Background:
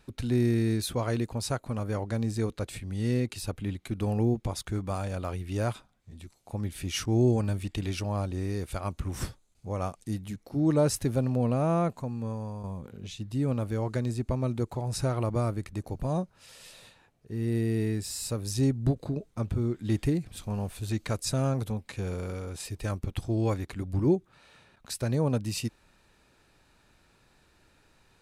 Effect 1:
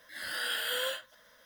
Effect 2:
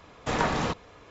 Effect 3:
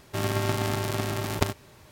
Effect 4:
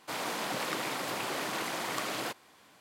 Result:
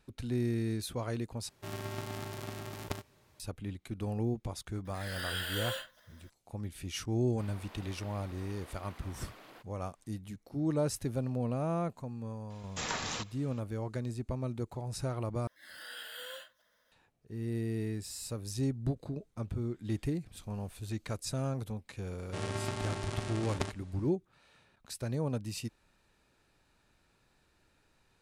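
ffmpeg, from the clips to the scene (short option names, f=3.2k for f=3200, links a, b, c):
-filter_complex "[3:a]asplit=2[a][b];[1:a]asplit=2[c][d];[0:a]volume=-7dB[e];[4:a]equalizer=f=7.5k:t=o:w=1.4:g=-9.5[f];[2:a]crystalizer=i=9:c=0[g];[b]aresample=22050,aresample=44100[h];[e]asplit=3[i][j][k];[i]atrim=end=1.494[l];[a]atrim=end=1.91,asetpts=PTS-STARTPTS,volume=-13dB[m];[j]atrim=start=3.396:end=15.474[n];[d]atrim=end=1.45,asetpts=PTS-STARTPTS,volume=-12dB[o];[k]atrim=start=16.916[p];[c]atrim=end=1.45,asetpts=PTS-STARTPTS,volume=-4dB,afade=t=in:d=0.004:c=hsin,afade=t=out:st=1.446:d=0.004:c=hsin,adelay=213885S[q];[f]atrim=end=2.8,asetpts=PTS-STARTPTS,volume=-18dB,afade=t=in:d=0.004:c=hsin,afade=t=out:st=2.796:d=0.004:c=hsin,adelay=321930S[r];[g]atrim=end=1.1,asetpts=PTS-STARTPTS,volume=-16dB,afade=t=in:d=0.004:c=hsin,afade=t=out:st=1.096:d=0.004:c=hsin,adelay=12500[s];[h]atrim=end=1.91,asetpts=PTS-STARTPTS,volume=-9.5dB,afade=t=in:d=0.004:c=hsin,afade=t=out:st=1.906:d=0.004:c=hsin,adelay=22190[t];[l][m]acrossfade=d=0.004:c1=hsin:c2=hsin[u];[u][n]acrossfade=d=0.004:c1=hsin:c2=hsin[v];[v][o]acrossfade=d=0.004:c1=hsin:c2=hsin[w];[w][p]acrossfade=d=0.004:c1=hsin:c2=hsin[x];[x][q][r][s][t]amix=inputs=5:normalize=0"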